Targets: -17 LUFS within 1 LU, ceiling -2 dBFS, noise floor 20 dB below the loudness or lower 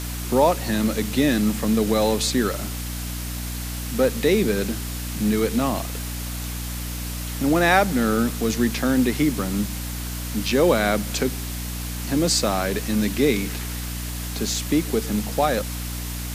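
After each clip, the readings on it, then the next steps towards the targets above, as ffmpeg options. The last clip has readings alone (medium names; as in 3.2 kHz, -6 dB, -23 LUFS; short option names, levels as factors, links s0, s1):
hum 60 Hz; highest harmonic 300 Hz; hum level -28 dBFS; noise floor -30 dBFS; noise floor target -43 dBFS; loudness -23.0 LUFS; peak level -3.5 dBFS; loudness target -17.0 LUFS
-> -af "bandreject=f=60:t=h:w=6,bandreject=f=120:t=h:w=6,bandreject=f=180:t=h:w=6,bandreject=f=240:t=h:w=6,bandreject=f=300:t=h:w=6"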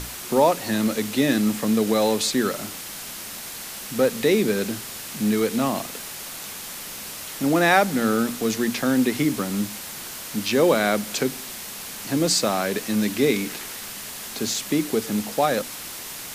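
hum not found; noise floor -36 dBFS; noise floor target -44 dBFS
-> -af "afftdn=nr=8:nf=-36"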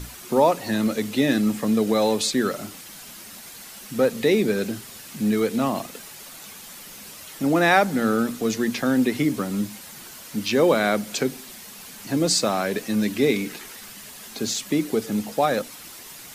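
noise floor -42 dBFS; noise floor target -43 dBFS
-> -af "afftdn=nr=6:nf=-42"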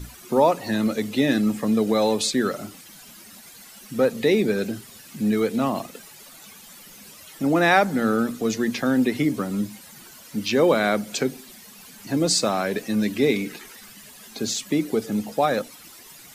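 noise floor -46 dBFS; loudness -23.0 LUFS; peak level -4.5 dBFS; loudness target -17.0 LUFS
-> -af "volume=2,alimiter=limit=0.794:level=0:latency=1"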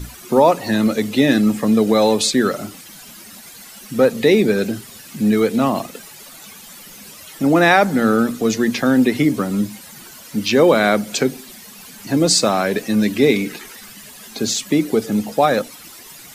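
loudness -17.0 LUFS; peak level -2.0 dBFS; noise floor -40 dBFS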